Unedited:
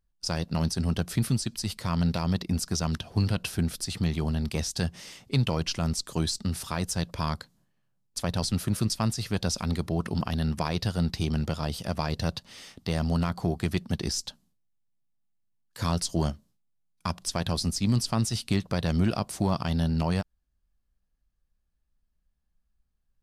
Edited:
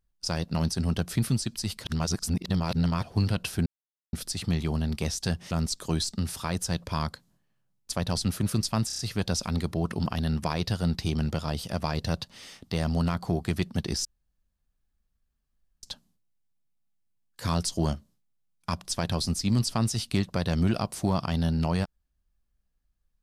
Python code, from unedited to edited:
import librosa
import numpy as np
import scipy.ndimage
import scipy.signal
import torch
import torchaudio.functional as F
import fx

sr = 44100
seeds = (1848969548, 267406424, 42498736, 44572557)

y = fx.edit(x, sr, fx.reverse_span(start_s=1.84, length_s=1.19),
    fx.insert_silence(at_s=3.66, length_s=0.47),
    fx.cut(start_s=5.04, length_s=0.74),
    fx.stutter(start_s=9.14, slice_s=0.03, count=5),
    fx.insert_room_tone(at_s=14.2, length_s=1.78), tone=tone)